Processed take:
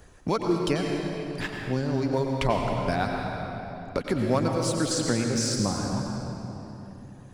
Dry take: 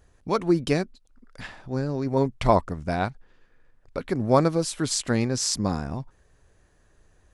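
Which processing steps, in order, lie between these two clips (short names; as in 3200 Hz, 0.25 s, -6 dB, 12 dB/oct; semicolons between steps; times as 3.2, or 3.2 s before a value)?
reverb removal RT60 1.8 s; sample leveller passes 1; compressor 2:1, threshold -26 dBFS, peak gain reduction 8.5 dB; reverb RT60 2.5 s, pre-delay 85 ms, DRR 2 dB; three-band squash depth 40%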